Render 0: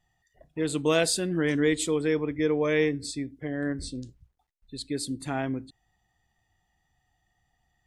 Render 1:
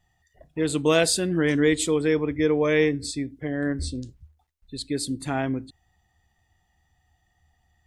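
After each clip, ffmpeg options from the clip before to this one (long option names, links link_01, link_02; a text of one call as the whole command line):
ffmpeg -i in.wav -af "equalizer=frequency=77:width=5.9:gain=13.5,volume=3.5dB" out.wav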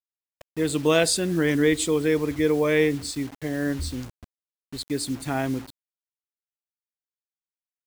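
ffmpeg -i in.wav -af "acrusher=bits=6:mix=0:aa=0.000001" out.wav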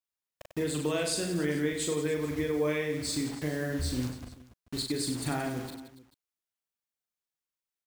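ffmpeg -i in.wav -filter_complex "[0:a]acompressor=threshold=-29dB:ratio=6,asplit=2[link_01][link_02];[link_02]aecho=0:1:40|96|174.4|284.2|437.8:0.631|0.398|0.251|0.158|0.1[link_03];[link_01][link_03]amix=inputs=2:normalize=0" out.wav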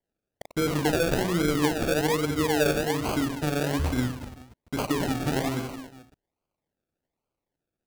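ffmpeg -i in.wav -af "asuperstop=centerf=2500:order=4:qfactor=4.5,acrusher=samples=34:mix=1:aa=0.000001:lfo=1:lforange=20.4:lforate=1.2,volume=5.5dB" out.wav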